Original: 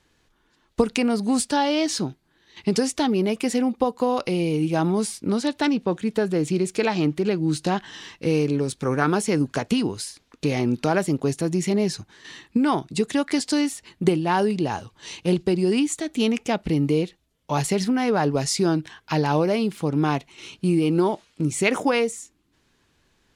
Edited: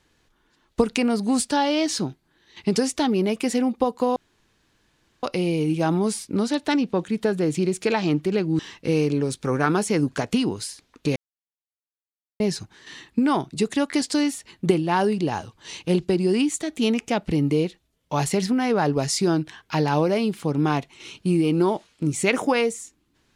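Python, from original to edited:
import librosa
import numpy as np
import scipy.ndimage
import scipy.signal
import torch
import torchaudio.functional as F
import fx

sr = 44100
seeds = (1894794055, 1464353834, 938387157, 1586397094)

y = fx.edit(x, sr, fx.insert_room_tone(at_s=4.16, length_s=1.07),
    fx.cut(start_s=7.52, length_s=0.45),
    fx.silence(start_s=10.54, length_s=1.24), tone=tone)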